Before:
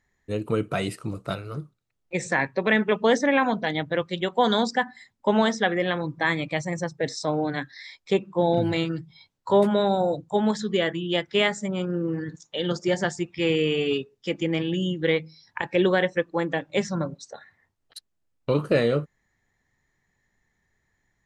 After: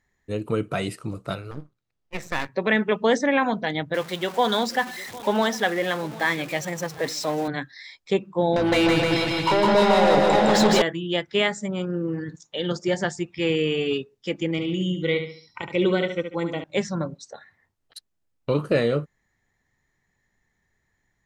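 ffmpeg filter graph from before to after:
ffmpeg -i in.wav -filter_complex "[0:a]asettb=1/sr,asplit=3[link_01][link_02][link_03];[link_01]atrim=end=1.514[link_04];[link_02]atrim=start=1.51:end=2.49,asetpts=PTS-STARTPTS,afade=type=in:duration=0.004:curve=qsin,afade=type=out:start_time=0.976:duration=0.004:curve=qsin,lowpass=5900,aeval=exprs='max(val(0),0)':channel_layout=same[link_05];[link_03]atrim=start=2.486[link_06];[link_04][link_05]acrossfade=duration=0.004:curve1=hsin:curve2=qsin[link_07];[link_07][link_06]acrossfade=duration=0.004:curve1=qsin:curve2=hsin,asettb=1/sr,asplit=3[link_08][link_09][link_10];[link_08]atrim=end=3.944[link_11];[link_09]atrim=start=3.94:end=7.48,asetpts=PTS-STARTPTS,afade=type=in:duration=0.004:curve=qsin,afade=type=out:start_time=3.536:duration=0.004:curve=qsin,aeval=exprs='val(0)+0.5*0.0266*sgn(val(0))':channel_layout=same,highpass=frequency=290:poles=1,aecho=1:1:754:0.112,atrim=end_sample=156114[link_12];[link_10]atrim=start=7.476[link_13];[link_11][link_12]acrossfade=duration=0.004:curve1=hsin:curve2=qsin[link_14];[link_14][link_13]acrossfade=duration=0.004:curve1=qsin:curve2=hsin,asettb=1/sr,asplit=3[link_15][link_16][link_17];[link_15]atrim=end=8.564[link_18];[link_16]atrim=start=8.56:end=10.82,asetpts=PTS-STARTPTS,afade=type=in:duration=0.004:curve=qsin,afade=type=out:start_time=2.256:duration=0.004:curve=qsin,acompressor=threshold=-28dB:ratio=8:attack=3.2:release=140:knee=1:detection=peak,asplit=2[link_19][link_20];[link_20]highpass=frequency=720:poles=1,volume=31dB,asoftclip=type=tanh:threshold=-13dB[link_21];[link_19][link_21]amix=inputs=2:normalize=0,lowpass=frequency=4000:poles=1,volume=-6dB,aecho=1:1:160|304|433.6|550.2|655.2|749.7:0.794|0.631|0.501|0.398|0.316|0.251,atrim=end_sample=99666[link_22];[link_17]atrim=start=10.816[link_23];[link_18][link_22]acrossfade=duration=0.004:curve1=hsin:curve2=qsin[link_24];[link_24][link_23]acrossfade=duration=0.004:curve1=qsin:curve2=hsin,asettb=1/sr,asplit=3[link_25][link_26][link_27];[link_25]atrim=end=14.514[link_28];[link_26]atrim=start=14.51:end=16.64,asetpts=PTS-STARTPTS,afade=type=in:duration=0.004:curve=qsin,afade=type=out:start_time=2.126:duration=0.004:curve=qsin,asuperstop=centerf=1700:order=12:qfactor=5.6,equalizer=frequency=780:width=1.2:gain=-5.5,aecho=1:1:71|142|213|284:0.398|0.147|0.0545|0.0202,atrim=end_sample=93933[link_29];[link_27]atrim=start=16.636[link_30];[link_28][link_29]acrossfade=duration=0.004:curve1=hsin:curve2=qsin[link_31];[link_31][link_30]acrossfade=duration=0.004:curve1=qsin:curve2=hsin" out.wav

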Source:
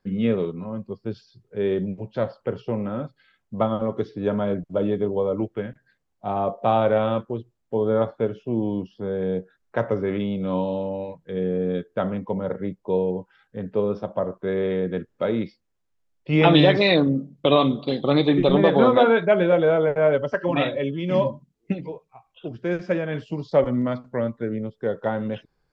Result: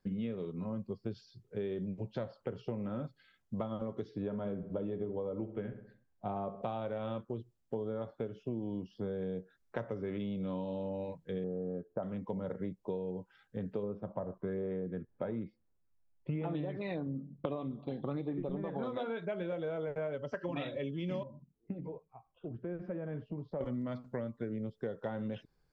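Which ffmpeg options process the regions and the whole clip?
ffmpeg -i in.wav -filter_complex "[0:a]asettb=1/sr,asplit=3[link_01][link_02][link_03];[link_01]atrim=end=4.224[link_04];[link_02]atrim=start=4.22:end=6.62,asetpts=PTS-STARTPTS,afade=type=in:duration=0.004:curve=qsin,afade=type=out:start_time=2.396:duration=0.004:curve=qsin,aemphasis=mode=reproduction:type=75fm,asplit=2[link_05][link_06];[link_06]adelay=65,lowpass=frequency=2200:poles=1,volume=-12.5dB,asplit=2[link_07][link_08];[link_08]adelay=65,lowpass=frequency=2200:poles=1,volume=0.51,asplit=2[link_09][link_10];[link_10]adelay=65,lowpass=frequency=2200:poles=1,volume=0.51,asplit=2[link_11][link_12];[link_12]adelay=65,lowpass=frequency=2200:poles=1,volume=0.51,asplit=2[link_13][link_14];[link_14]adelay=65,lowpass=frequency=2200:poles=1,volume=0.51[link_15];[link_05][link_07][link_09][link_11][link_13][link_15]amix=inputs=6:normalize=0,atrim=end_sample=105840[link_16];[link_03]atrim=start=6.616[link_17];[link_04][link_16]acrossfade=duration=0.004:curve1=hsin:curve2=qsin[link_18];[link_18][link_17]acrossfade=duration=0.004:curve1=qsin:curve2=hsin,asettb=1/sr,asplit=3[link_19][link_20][link_21];[link_19]atrim=end=11.444[link_22];[link_20]atrim=start=11.44:end=12.03,asetpts=PTS-STARTPTS,afade=type=in:duration=0.004:curve=qsin,afade=type=out:start_time=0.586:duration=0.004:curve=qsin,lowpass=frequency=1300:width=0.5412,lowpass=frequency=1300:width=1.3066,equalizer=frequency=670:width_type=o:width=0.72:gain=6.5[link_23];[link_21]atrim=start=12.026[link_24];[link_22][link_23]acrossfade=duration=0.004:curve1=hsin:curve2=qsin[link_25];[link_25][link_24]acrossfade=duration=0.004:curve1=qsin:curve2=hsin,asettb=1/sr,asplit=3[link_26][link_27][link_28];[link_26]atrim=end=13.834[link_29];[link_27]atrim=start=13.83:end=18.83,asetpts=PTS-STARTPTS,afade=type=in:duration=0.004:curve=qsin,afade=type=out:start_time=4.996:duration=0.004:curve=qsin,lowpass=1600,aphaser=in_gain=1:out_gain=1:delay=1.3:decay=0.31:speed=1.1:type=sinusoidal[link_30];[link_28]atrim=start=18.826[link_31];[link_29][link_30]acrossfade=duration=0.004:curve1=hsin:curve2=qsin[link_32];[link_32][link_31]acrossfade=duration=0.004:curve1=qsin:curve2=hsin,asettb=1/sr,asplit=3[link_33][link_34][link_35];[link_33]atrim=end=21.234[link_36];[link_34]atrim=start=21.23:end=23.61,asetpts=PTS-STARTPTS,afade=type=in:duration=0.004:curve=qsin,afade=type=out:start_time=2.376:duration=0.004:curve=qsin,lowpass=1200,acompressor=threshold=-36dB:ratio=2:attack=3.2:release=140:knee=1:detection=peak[link_37];[link_35]atrim=start=23.606[link_38];[link_36][link_37]acrossfade=duration=0.004:curve1=hsin:curve2=qsin[link_39];[link_39][link_38]acrossfade=duration=0.004:curve1=qsin:curve2=hsin,equalizer=frequency=1100:width=0.33:gain=-4.5,acompressor=threshold=-31dB:ratio=16,volume=-2.5dB" out.wav

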